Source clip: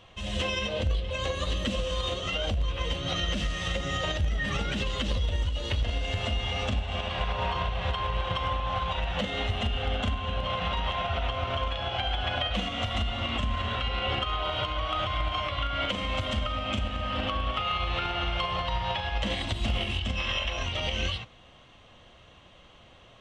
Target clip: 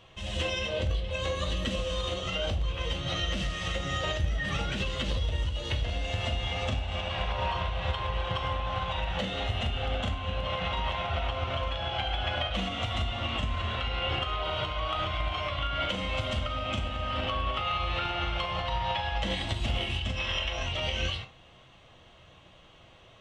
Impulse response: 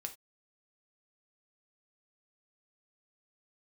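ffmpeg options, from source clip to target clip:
-filter_complex "[1:a]atrim=start_sample=2205[s0];[0:a][s0]afir=irnorm=-1:irlink=0,volume=1.19"

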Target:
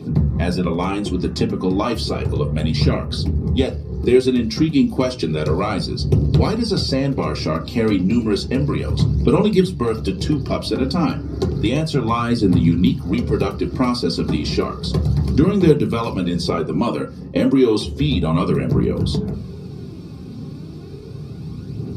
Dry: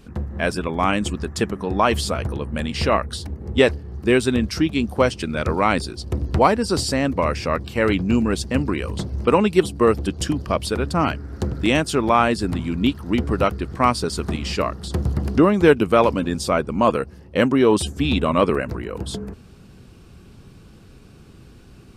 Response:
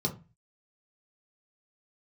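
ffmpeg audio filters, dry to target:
-filter_complex "[0:a]acrossover=split=1700|4600[s0][s1][s2];[s0]acompressor=threshold=0.0316:ratio=4[s3];[s1]acompressor=threshold=0.0178:ratio=4[s4];[s2]acompressor=threshold=0.00891:ratio=4[s5];[s3][s4][s5]amix=inputs=3:normalize=0,aphaser=in_gain=1:out_gain=1:delay=4.1:decay=0.43:speed=0.32:type=triangular[s6];[1:a]atrim=start_sample=2205[s7];[s6][s7]afir=irnorm=-1:irlink=0"

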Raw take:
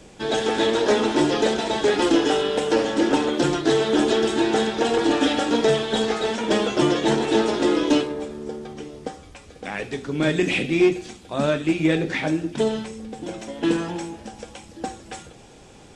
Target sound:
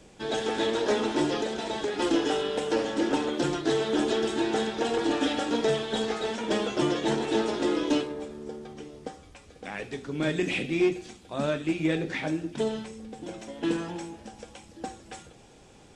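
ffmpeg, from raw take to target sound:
-filter_complex "[0:a]asettb=1/sr,asplit=3[s0][s1][s2];[s0]atrim=end=1.404[s3];[s1]atrim=start=1.4:end=2,asetpts=PTS-STARTPTS,afade=t=in:d=0.004:c=qsin,afade=t=out:st=0.596:d=0.004:c=qsin,acompressor=threshold=0.1:ratio=6[s4];[s2]atrim=start=1.996[s5];[s3][s4]acrossfade=d=0.004:c1=hsin:c2=qsin[s6];[s6][s5]acrossfade=d=0.004:c1=qsin:c2=hsin,volume=0.473"

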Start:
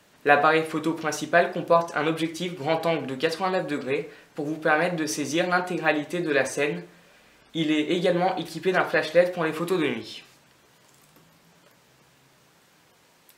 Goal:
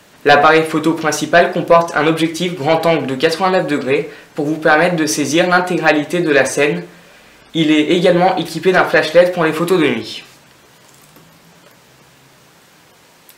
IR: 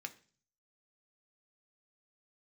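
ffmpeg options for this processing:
-af "aeval=exprs='0.794*sin(PI/2*2.24*val(0)/0.794)':c=same,volume=1.12"

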